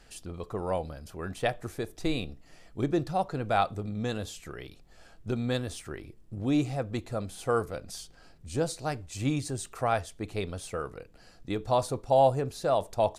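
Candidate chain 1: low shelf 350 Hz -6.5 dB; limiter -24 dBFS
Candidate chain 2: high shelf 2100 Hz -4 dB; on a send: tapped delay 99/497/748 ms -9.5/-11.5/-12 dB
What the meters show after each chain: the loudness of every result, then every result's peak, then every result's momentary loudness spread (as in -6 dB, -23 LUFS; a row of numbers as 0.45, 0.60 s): -37.0, -31.0 LUFS; -24.0, -10.5 dBFS; 12, 14 LU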